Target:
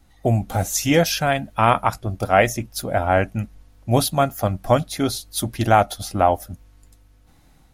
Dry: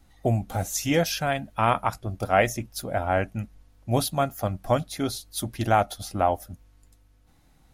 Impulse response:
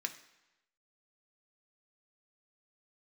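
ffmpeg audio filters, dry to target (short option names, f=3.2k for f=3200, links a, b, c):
-af "dynaudnorm=f=190:g=3:m=4dB,volume=2dB"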